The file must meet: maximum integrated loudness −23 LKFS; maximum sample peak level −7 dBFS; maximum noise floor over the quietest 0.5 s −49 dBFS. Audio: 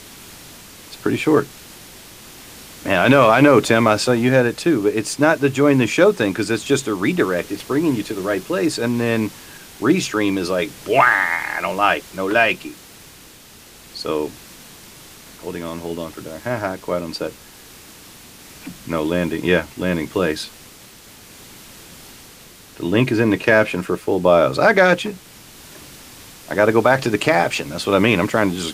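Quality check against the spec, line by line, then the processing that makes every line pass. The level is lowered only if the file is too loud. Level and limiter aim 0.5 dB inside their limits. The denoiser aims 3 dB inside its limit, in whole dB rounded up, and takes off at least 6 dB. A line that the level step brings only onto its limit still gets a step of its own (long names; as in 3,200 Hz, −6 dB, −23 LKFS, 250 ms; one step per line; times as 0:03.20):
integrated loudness −18.0 LKFS: out of spec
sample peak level −2.0 dBFS: out of spec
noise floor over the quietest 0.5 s −44 dBFS: out of spec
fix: level −5.5 dB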